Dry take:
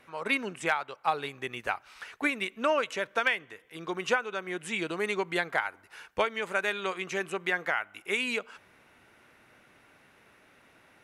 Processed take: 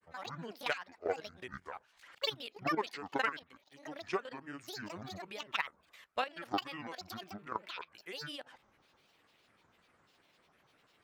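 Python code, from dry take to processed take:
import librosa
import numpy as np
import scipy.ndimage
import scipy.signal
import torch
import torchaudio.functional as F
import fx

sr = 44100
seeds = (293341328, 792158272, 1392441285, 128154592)

y = fx.level_steps(x, sr, step_db=13)
y = fx.granulator(y, sr, seeds[0], grain_ms=100.0, per_s=20.0, spray_ms=24.0, spread_st=12)
y = F.gain(torch.from_numpy(y), -3.5).numpy()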